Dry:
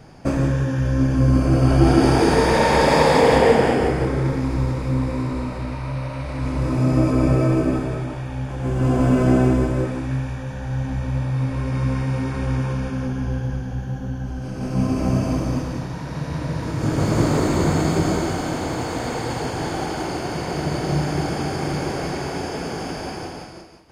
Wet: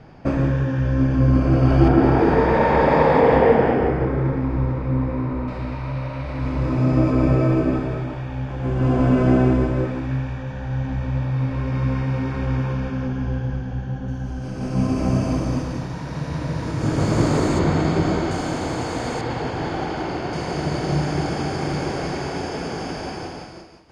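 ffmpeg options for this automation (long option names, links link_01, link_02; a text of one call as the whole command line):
ffmpeg -i in.wav -af "asetnsamples=nb_out_samples=441:pad=0,asendcmd='1.88 lowpass f 1900;5.48 lowpass f 4100;14.08 lowpass f 8900;17.59 lowpass f 4400;18.31 lowpass f 9000;19.21 lowpass f 3900;20.33 lowpass f 7300',lowpass=3400" out.wav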